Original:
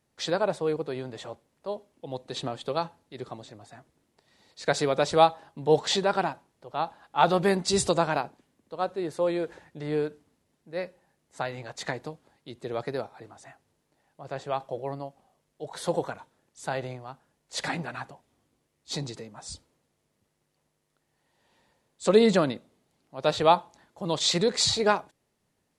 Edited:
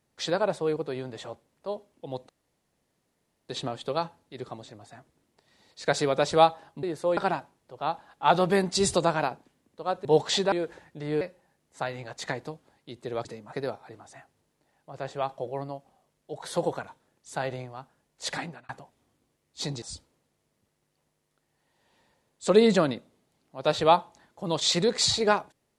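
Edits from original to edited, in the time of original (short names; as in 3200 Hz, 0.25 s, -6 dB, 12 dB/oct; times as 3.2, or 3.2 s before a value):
2.29 insert room tone 1.20 s
5.63–6.1 swap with 8.98–9.32
10.01–10.8 cut
17.58–18 fade out
19.13–19.41 move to 12.84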